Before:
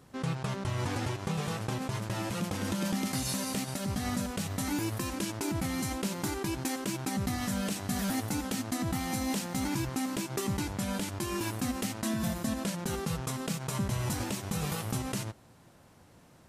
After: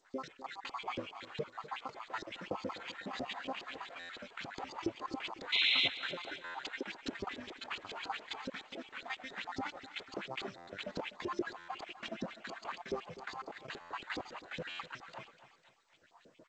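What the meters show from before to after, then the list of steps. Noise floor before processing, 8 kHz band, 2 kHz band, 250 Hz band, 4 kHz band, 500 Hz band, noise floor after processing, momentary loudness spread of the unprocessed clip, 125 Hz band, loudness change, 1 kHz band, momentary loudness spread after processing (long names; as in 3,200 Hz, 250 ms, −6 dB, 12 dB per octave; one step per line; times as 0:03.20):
−58 dBFS, −23.5 dB, 0.0 dB, −14.5 dB, +1.5 dB, −6.0 dB, −66 dBFS, 3 LU, −23.0 dB, −6.5 dB, −4.5 dB, 6 LU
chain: time-frequency cells dropped at random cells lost 78%
in parallel at −1 dB: downward compressor 6 to 1, threshold −42 dBFS, peak gain reduction 13.5 dB
on the sum: sample-rate reduction 5,600 Hz, jitter 0%
auto-filter band-pass saw up 7.2 Hz 340–4,900 Hz
sound drawn into the spectrogram noise, 0:05.52–0:05.88, 2,000–4,200 Hz −34 dBFS
on a send: repeating echo 250 ms, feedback 44%, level −15 dB
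on the sum: buffer that repeats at 0:03.99/0:06.44/0:10.57/0:11.58/0:13.80/0:14.69, samples 512, times 8
level +4.5 dB
G.722 64 kbit/s 16,000 Hz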